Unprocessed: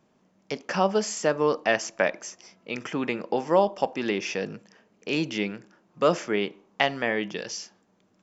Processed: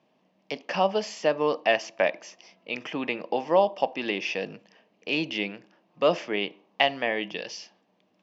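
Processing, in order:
loudspeaker in its box 190–5,000 Hz, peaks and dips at 220 Hz −4 dB, 390 Hz −5 dB, 670 Hz +3 dB, 1,400 Hz −9 dB, 2,800 Hz +5 dB

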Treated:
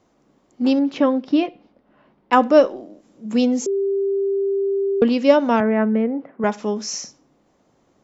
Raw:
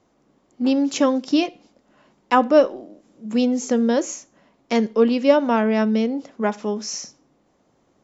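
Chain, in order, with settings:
0:00.79–0:02.33: high-frequency loss of the air 310 metres
0:03.66–0:05.02: beep over 394 Hz −19 dBFS
0:05.60–0:06.44: Chebyshev band-pass filter 120–2,000 Hz, order 3
level +1.5 dB

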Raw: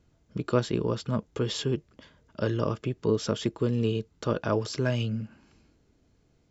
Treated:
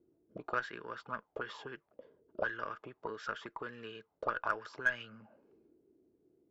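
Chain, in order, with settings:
envelope filter 350–1,600 Hz, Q 5.9, up, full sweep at −23.5 dBFS
harmonic generator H 6 −31 dB, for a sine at −25 dBFS
level +7.5 dB

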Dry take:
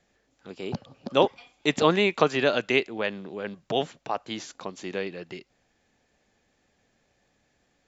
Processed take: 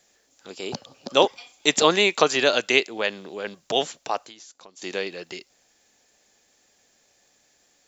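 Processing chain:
bass and treble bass −10 dB, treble +14 dB
0:04.21–0:04.82: downward compressor 5 to 1, threshold −49 dBFS, peak gain reduction 19.5 dB
level +3 dB

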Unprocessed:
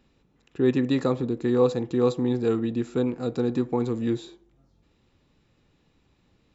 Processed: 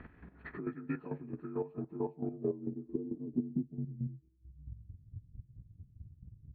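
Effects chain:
partials spread apart or drawn together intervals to 84%
low-shelf EQ 130 Hz +7.5 dB
downward compressor 5 to 1, threshold −52 dBFS, peak gain reduction 31.5 dB
square-wave tremolo 4.5 Hz, depth 60%, duty 30%
low-pass filter sweep 1,700 Hz → 110 Hz, 0:01.31–0:04.31
transient designer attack +3 dB, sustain −2 dB
level +12.5 dB

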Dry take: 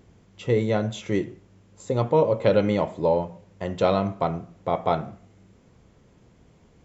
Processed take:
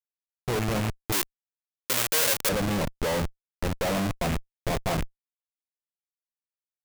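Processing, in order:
loose part that buzzes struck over −27 dBFS, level −21 dBFS
comparator with hysteresis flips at −26.5 dBFS
0:01.12–0:02.49: spectral tilt +4.5 dB per octave

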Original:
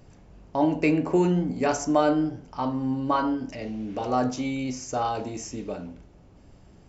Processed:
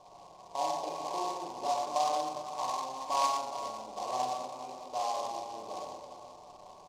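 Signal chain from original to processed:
compressor on every frequency bin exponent 0.6
formant resonators in series a
comb filter 2 ms, depth 40%
on a send: echo machine with several playback heads 204 ms, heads first and second, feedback 40%, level −12.5 dB
on the sum: four-comb reverb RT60 1 s, combs from 32 ms, DRR −2.5 dB
short delay modulated by noise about 4,400 Hz, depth 0.041 ms
level −3 dB

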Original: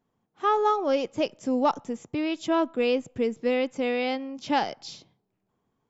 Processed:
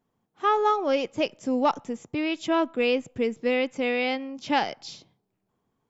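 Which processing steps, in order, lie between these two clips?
dynamic equaliser 2,300 Hz, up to +5 dB, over −45 dBFS, Q 1.4

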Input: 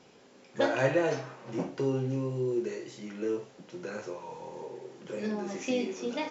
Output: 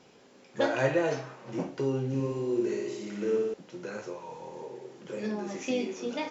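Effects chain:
0:02.08–0:03.54: flutter between parallel walls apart 10.1 metres, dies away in 1.1 s

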